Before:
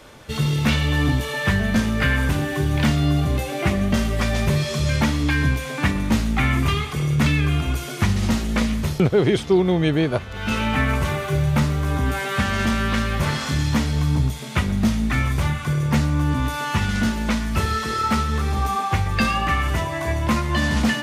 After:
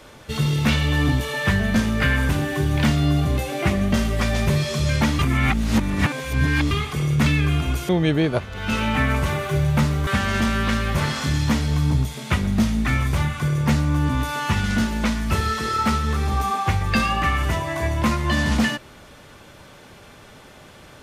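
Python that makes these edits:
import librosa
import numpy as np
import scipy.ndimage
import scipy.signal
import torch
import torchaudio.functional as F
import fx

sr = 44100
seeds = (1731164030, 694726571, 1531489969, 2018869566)

y = fx.edit(x, sr, fx.reverse_span(start_s=5.19, length_s=1.52),
    fx.cut(start_s=7.89, length_s=1.79),
    fx.cut(start_s=11.86, length_s=0.46), tone=tone)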